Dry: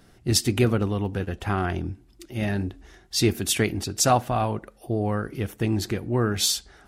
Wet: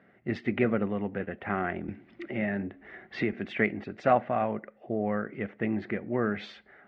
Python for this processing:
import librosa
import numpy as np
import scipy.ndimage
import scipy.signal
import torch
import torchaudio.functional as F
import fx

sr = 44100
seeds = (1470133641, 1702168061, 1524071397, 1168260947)

y = fx.cabinet(x, sr, low_hz=200.0, low_slope=12, high_hz=2300.0, hz=(210.0, 310.0, 590.0, 960.0, 2000.0), db=(5, -4, 5, -5, 9))
y = fx.band_squash(y, sr, depth_pct=70, at=(1.88, 3.33))
y = y * 10.0 ** (-3.5 / 20.0)